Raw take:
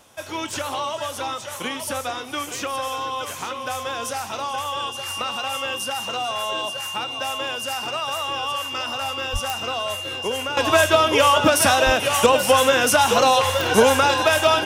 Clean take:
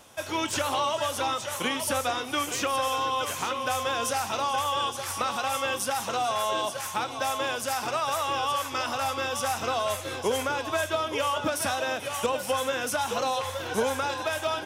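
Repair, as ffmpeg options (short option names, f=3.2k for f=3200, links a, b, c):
-filter_complex "[0:a]adeclick=t=4,bandreject=f=2.8k:w=30,asplit=3[a][b][c];[a]afade=t=out:st=9.32:d=0.02[d];[b]highpass=f=140:w=0.5412,highpass=f=140:w=1.3066,afade=t=in:st=9.32:d=0.02,afade=t=out:st=9.44:d=0.02[e];[c]afade=t=in:st=9.44:d=0.02[f];[d][e][f]amix=inputs=3:normalize=0,asplit=3[g][h][i];[g]afade=t=out:st=11.85:d=0.02[j];[h]highpass=f=140:w=0.5412,highpass=f=140:w=1.3066,afade=t=in:st=11.85:d=0.02,afade=t=out:st=11.97:d=0.02[k];[i]afade=t=in:st=11.97:d=0.02[l];[j][k][l]amix=inputs=3:normalize=0,asetnsamples=n=441:p=0,asendcmd='10.57 volume volume -11.5dB',volume=0dB"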